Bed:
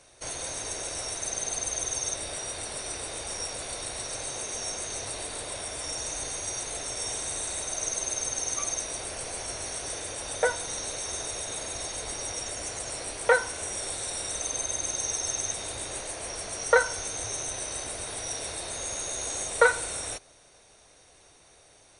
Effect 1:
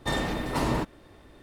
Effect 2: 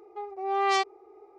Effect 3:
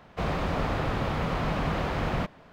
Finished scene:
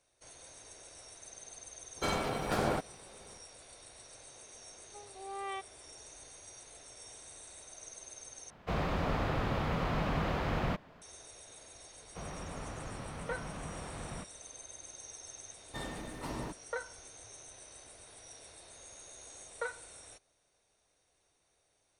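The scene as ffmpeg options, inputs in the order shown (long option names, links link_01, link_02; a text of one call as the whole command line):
ffmpeg -i bed.wav -i cue0.wav -i cue1.wav -i cue2.wav -filter_complex "[1:a]asplit=2[link_01][link_02];[3:a]asplit=2[link_03][link_04];[0:a]volume=-18.5dB[link_05];[link_01]aeval=exprs='val(0)*sin(2*PI*460*n/s)':channel_layout=same[link_06];[2:a]aresample=8000,aresample=44100[link_07];[link_05]asplit=2[link_08][link_09];[link_08]atrim=end=8.504[link_10];[link_03]atrim=end=2.52,asetpts=PTS-STARTPTS,volume=-4.5dB[link_11];[link_09]atrim=start=11.016[link_12];[link_06]atrim=end=1.42,asetpts=PTS-STARTPTS,volume=-2dB,afade=type=in:duration=0.004:curve=hsin,afade=type=out:start_time=1.416:duration=0.004:curve=hsin,adelay=1960[link_13];[link_07]atrim=end=1.38,asetpts=PTS-STARTPTS,volume=-15.5dB,afade=type=in:duration=0.004:curve=hsin,afade=type=out:start_time=1.376:duration=0.004:curve=hsin,adelay=4780[link_14];[link_04]atrim=end=2.52,asetpts=PTS-STARTPTS,volume=-15dB,afade=type=in:duration=0.004:curve=hsin,afade=type=out:start_time=2.516:duration=0.004:curve=hsin,adelay=11980[link_15];[link_02]atrim=end=1.42,asetpts=PTS-STARTPTS,volume=-13.5dB,afade=type=in:duration=0.004:curve=hsin,afade=type=out:start_time=1.416:duration=0.004:curve=hsin,adelay=15680[link_16];[link_10][link_11]acrossfade=duration=0.004:curve1=hsin:curve2=hsin[link_17];[link_17][link_12]acrossfade=duration=0.004:curve1=hsin:curve2=hsin[link_18];[link_18][link_13][link_14][link_15][link_16]amix=inputs=5:normalize=0" out.wav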